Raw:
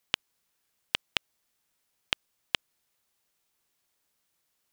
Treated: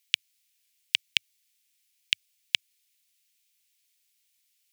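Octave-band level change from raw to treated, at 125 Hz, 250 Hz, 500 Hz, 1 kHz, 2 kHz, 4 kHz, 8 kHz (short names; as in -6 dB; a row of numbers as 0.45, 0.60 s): under -10 dB, under -20 dB, under -30 dB, under -15 dB, +3.5 dB, +5.0 dB, +5.0 dB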